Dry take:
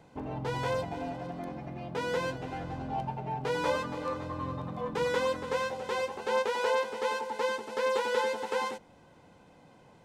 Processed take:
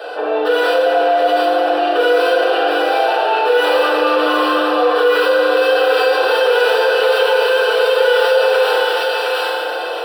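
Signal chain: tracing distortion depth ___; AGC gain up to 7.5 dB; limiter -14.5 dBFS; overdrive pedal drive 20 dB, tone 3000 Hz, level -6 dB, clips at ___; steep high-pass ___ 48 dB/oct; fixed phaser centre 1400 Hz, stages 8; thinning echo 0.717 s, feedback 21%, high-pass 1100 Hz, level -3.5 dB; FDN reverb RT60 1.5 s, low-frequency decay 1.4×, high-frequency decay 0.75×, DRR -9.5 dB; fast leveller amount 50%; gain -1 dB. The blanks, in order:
0.25 ms, -14.5 dBFS, 310 Hz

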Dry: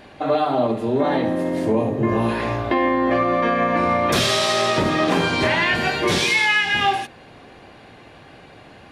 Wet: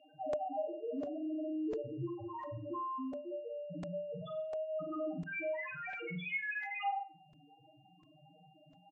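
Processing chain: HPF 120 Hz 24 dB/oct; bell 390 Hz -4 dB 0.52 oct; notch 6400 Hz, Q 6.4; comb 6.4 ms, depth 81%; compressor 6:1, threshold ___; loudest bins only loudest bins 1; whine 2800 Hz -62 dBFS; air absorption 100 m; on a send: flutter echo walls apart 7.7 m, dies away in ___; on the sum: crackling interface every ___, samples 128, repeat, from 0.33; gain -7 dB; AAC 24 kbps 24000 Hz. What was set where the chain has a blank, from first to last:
-20 dBFS, 0.38 s, 0.70 s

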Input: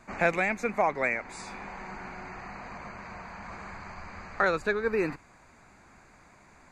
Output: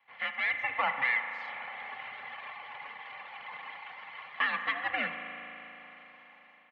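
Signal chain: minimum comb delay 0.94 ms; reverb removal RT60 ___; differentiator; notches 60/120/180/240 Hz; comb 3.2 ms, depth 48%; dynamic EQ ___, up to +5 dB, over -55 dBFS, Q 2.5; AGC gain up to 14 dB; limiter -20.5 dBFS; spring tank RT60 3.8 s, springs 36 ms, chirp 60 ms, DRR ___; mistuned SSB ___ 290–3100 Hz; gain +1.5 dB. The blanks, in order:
1.2 s, 1900 Hz, 5.5 dB, -130 Hz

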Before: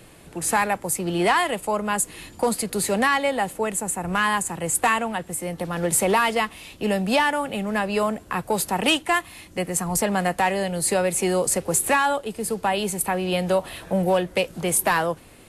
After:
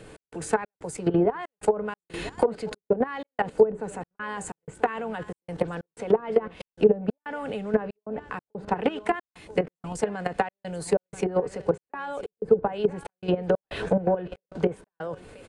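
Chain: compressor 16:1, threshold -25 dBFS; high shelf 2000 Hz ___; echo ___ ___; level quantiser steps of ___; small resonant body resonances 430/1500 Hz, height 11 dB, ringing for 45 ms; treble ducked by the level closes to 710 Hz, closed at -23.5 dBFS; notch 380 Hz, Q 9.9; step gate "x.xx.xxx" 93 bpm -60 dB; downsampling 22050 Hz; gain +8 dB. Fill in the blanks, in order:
-5 dB, 0.988 s, -17.5 dB, 14 dB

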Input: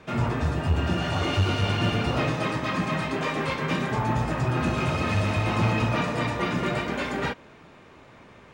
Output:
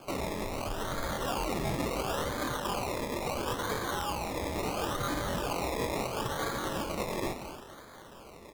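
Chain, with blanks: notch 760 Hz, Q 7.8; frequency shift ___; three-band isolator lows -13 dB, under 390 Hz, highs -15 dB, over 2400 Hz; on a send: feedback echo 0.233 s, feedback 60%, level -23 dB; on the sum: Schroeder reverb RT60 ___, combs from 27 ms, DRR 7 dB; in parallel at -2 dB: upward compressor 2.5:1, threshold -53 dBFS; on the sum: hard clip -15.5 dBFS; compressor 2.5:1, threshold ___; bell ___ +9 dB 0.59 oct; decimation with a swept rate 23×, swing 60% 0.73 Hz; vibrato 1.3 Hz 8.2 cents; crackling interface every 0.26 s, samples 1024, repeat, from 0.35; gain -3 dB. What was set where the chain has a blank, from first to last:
-52 Hz, 0.96 s, -31 dBFS, 2700 Hz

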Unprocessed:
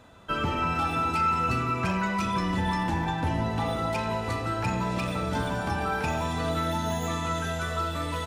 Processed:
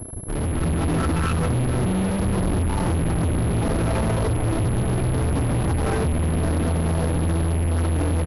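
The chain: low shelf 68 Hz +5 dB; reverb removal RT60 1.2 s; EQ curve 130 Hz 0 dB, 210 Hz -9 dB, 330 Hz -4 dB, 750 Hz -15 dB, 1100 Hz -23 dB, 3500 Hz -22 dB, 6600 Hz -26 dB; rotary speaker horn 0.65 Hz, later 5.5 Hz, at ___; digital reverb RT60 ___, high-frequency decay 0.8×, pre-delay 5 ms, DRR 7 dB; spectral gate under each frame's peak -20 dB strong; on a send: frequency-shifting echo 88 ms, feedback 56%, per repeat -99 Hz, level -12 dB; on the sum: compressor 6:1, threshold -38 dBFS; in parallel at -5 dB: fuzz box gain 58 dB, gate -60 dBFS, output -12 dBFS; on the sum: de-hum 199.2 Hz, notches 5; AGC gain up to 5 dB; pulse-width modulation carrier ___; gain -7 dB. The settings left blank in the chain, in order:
5.71, 0.61 s, 11000 Hz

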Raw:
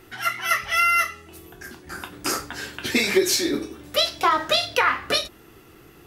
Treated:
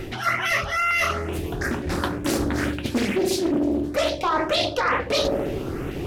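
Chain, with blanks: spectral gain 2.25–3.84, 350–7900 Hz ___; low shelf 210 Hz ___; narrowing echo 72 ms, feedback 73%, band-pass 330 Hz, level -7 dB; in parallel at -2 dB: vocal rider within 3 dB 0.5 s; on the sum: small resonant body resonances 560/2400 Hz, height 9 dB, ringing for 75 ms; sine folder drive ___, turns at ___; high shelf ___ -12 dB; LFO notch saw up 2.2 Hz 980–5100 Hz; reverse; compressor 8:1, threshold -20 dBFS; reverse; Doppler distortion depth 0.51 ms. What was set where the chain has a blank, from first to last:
-6 dB, +7 dB, 7 dB, 0 dBFS, 6900 Hz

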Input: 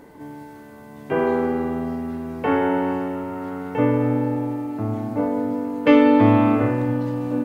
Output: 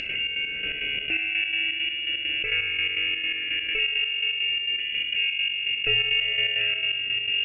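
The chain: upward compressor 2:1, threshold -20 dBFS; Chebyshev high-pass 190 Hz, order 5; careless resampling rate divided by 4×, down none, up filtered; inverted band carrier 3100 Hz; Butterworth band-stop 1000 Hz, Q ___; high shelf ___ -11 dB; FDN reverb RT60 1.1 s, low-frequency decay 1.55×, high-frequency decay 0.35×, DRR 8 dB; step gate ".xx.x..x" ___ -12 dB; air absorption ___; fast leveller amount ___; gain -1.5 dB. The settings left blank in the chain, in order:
0.73, 2000 Hz, 167 bpm, 140 m, 70%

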